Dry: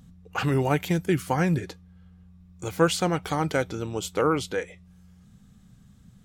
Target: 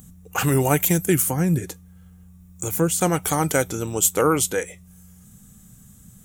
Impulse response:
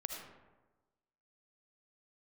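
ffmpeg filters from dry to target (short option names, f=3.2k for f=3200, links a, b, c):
-filter_complex "[0:a]asettb=1/sr,asplit=3[a][b][c];[a]atrim=end=1.244[d];[b]atrim=start=1.24:end=3.01,asetpts=PTS-STARTPTS,afade=t=in:d=0.004:c=qsin,afade=t=out:st=1.766:d=0.004:c=qsin,acrossover=split=400[e][f];[f]acompressor=threshold=-41dB:ratio=2[g];[e][g]amix=inputs=2:normalize=0[h];[c]atrim=start=3.006[i];[d][h]acrossfade=d=0.004:c1=hsin:c2=qsin[j];[j][i]acrossfade=d=0.004:c1=qsin:c2=hsin,aexciter=amount=8.6:drive=3.3:freq=6.5k,volume=4dB"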